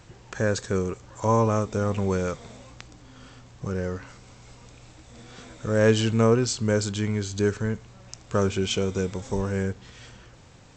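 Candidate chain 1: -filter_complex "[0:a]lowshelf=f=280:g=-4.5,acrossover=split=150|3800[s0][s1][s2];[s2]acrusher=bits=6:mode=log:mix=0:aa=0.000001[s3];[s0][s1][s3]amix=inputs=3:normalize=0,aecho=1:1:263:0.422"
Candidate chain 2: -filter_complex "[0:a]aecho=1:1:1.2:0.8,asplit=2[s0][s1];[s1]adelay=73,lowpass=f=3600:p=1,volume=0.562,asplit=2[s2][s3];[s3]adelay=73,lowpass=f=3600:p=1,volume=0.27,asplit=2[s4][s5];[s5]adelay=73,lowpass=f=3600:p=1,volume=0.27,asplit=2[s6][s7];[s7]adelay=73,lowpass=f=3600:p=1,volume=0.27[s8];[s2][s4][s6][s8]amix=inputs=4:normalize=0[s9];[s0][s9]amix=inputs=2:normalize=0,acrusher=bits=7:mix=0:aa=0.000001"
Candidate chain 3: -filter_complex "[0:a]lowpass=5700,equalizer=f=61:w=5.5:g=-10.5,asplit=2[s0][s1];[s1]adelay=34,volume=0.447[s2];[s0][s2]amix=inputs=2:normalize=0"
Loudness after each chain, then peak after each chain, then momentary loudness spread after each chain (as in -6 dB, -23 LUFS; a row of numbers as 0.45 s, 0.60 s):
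-27.0 LUFS, -23.0 LUFS, -25.0 LUFS; -8.0 dBFS, -4.0 dBFS, -6.5 dBFS; 18 LU, 22 LU, 17 LU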